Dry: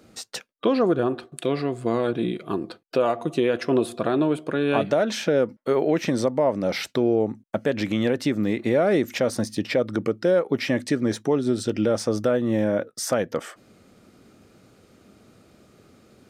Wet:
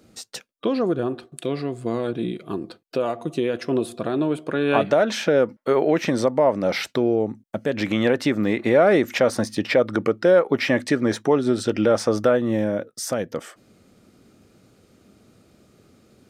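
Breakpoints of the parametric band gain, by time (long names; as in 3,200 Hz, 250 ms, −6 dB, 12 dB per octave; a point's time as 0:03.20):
parametric band 1,200 Hz 2.9 octaves
0:04.11 −4 dB
0:04.75 +4.5 dB
0:06.78 +4.5 dB
0:07.60 −4.5 dB
0:07.88 +7 dB
0:12.25 +7 dB
0:12.79 −3.5 dB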